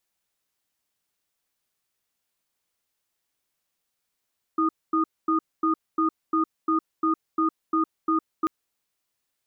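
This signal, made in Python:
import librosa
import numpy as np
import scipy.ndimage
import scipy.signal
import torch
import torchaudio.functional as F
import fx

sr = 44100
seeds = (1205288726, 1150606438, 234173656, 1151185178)

y = fx.cadence(sr, length_s=3.89, low_hz=321.0, high_hz=1230.0, on_s=0.11, off_s=0.24, level_db=-22.0)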